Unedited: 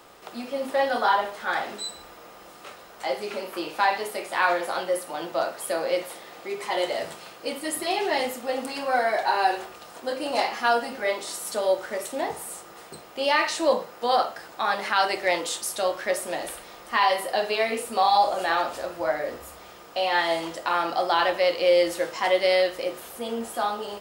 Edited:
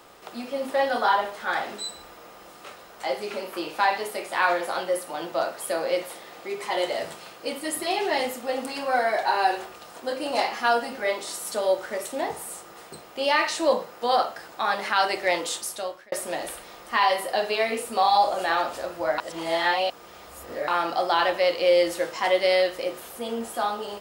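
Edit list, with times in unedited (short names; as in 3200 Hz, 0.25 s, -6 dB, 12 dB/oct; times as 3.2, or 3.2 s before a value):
15.55–16.12 fade out
19.18–20.68 reverse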